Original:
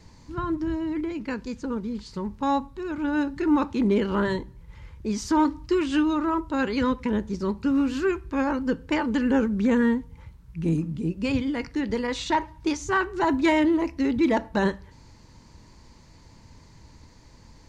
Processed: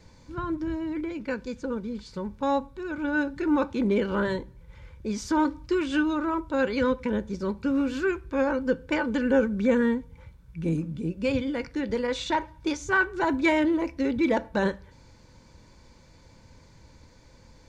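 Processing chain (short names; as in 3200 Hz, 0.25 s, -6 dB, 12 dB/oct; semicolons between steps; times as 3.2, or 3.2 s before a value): small resonant body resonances 530/1500/2300/3500 Hz, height 10 dB; gain -3 dB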